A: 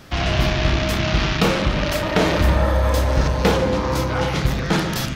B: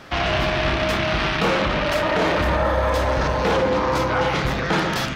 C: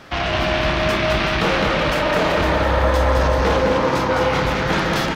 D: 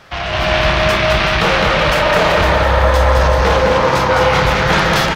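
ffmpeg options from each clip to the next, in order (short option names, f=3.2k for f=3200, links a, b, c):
-filter_complex "[0:a]asplit=2[a][b];[b]highpass=f=720:p=1,volume=12dB,asoftclip=type=tanh:threshold=-4.5dB[c];[a][c]amix=inputs=2:normalize=0,lowpass=f=1.9k:p=1,volume=-6dB,alimiter=limit=-12dB:level=0:latency=1:release=13"
-af "aecho=1:1:210|378|512.4|619.9|705.9:0.631|0.398|0.251|0.158|0.1"
-af "equalizer=f=280:t=o:w=0.84:g=-9.5,dynaudnorm=f=270:g=3:m=11.5dB"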